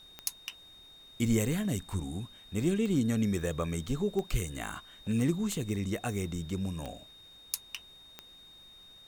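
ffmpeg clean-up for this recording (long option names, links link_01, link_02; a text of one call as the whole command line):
ffmpeg -i in.wav -af "adeclick=threshold=4,bandreject=frequency=3700:width=30,agate=range=-21dB:threshold=-46dB" out.wav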